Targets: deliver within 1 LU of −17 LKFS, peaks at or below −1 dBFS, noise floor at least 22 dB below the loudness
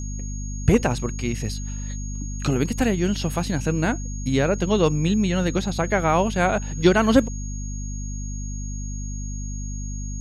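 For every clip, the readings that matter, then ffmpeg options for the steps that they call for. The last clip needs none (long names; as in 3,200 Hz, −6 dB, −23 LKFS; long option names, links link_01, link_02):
mains hum 50 Hz; hum harmonics up to 250 Hz; level of the hum −27 dBFS; interfering tone 6,600 Hz; level of the tone −38 dBFS; integrated loudness −24.0 LKFS; sample peak −3.0 dBFS; target loudness −17.0 LKFS
→ -af "bandreject=frequency=50:width_type=h:width=6,bandreject=frequency=100:width_type=h:width=6,bandreject=frequency=150:width_type=h:width=6,bandreject=frequency=200:width_type=h:width=6,bandreject=frequency=250:width_type=h:width=6"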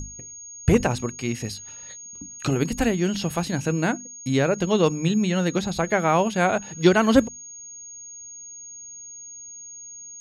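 mains hum none found; interfering tone 6,600 Hz; level of the tone −38 dBFS
→ -af "bandreject=frequency=6600:width=30"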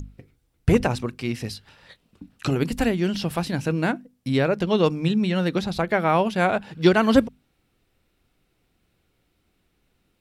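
interfering tone none found; integrated loudness −23.0 LKFS; sample peak −3.0 dBFS; target loudness −17.0 LKFS
→ -af "volume=6dB,alimiter=limit=-1dB:level=0:latency=1"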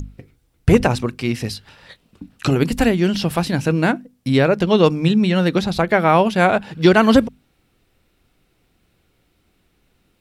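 integrated loudness −17.5 LKFS; sample peak −1.0 dBFS; background noise floor −64 dBFS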